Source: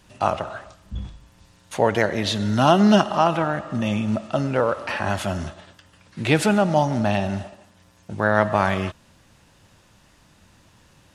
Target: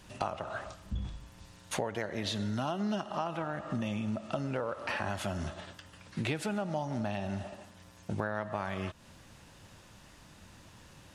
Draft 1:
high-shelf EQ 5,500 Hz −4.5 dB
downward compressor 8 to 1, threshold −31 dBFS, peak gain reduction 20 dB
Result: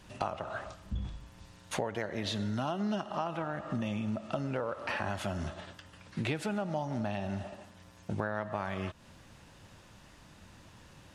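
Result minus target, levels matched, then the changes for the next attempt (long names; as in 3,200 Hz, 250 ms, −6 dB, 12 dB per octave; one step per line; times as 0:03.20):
8,000 Hz band −2.5 dB
remove: high-shelf EQ 5,500 Hz −4.5 dB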